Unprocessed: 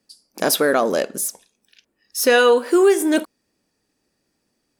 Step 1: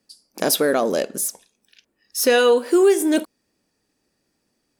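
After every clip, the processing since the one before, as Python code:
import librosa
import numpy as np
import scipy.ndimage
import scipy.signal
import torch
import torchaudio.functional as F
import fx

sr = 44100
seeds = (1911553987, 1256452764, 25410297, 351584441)

y = fx.dynamic_eq(x, sr, hz=1300.0, q=0.9, threshold_db=-31.0, ratio=4.0, max_db=-5)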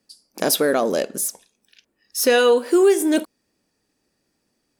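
y = x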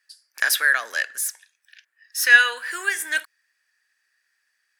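y = fx.highpass_res(x, sr, hz=1700.0, q=6.9)
y = y * librosa.db_to_amplitude(-2.0)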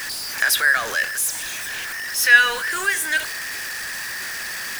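y = x + 0.5 * 10.0 ** (-23.5 / 20.0) * np.sign(x)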